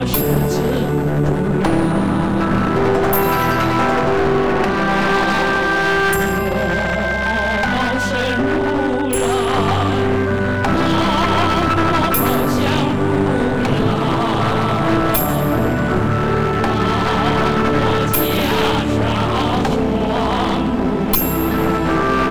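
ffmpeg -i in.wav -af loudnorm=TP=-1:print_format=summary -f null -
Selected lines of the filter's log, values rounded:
Input Integrated:    -16.7 LUFS
Input True Peak:      -1.6 dBTP
Input LRA:             1.3 LU
Input Threshold:     -26.7 LUFS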